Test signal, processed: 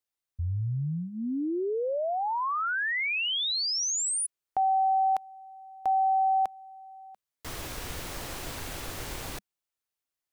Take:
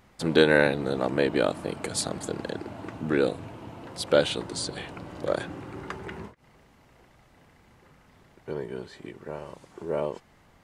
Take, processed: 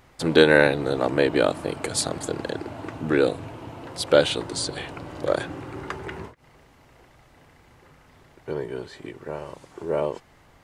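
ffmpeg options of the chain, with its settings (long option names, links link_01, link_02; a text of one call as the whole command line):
ffmpeg -i in.wav -af "equalizer=frequency=200:width_type=o:width=0.2:gain=-12.5,volume=4dB" out.wav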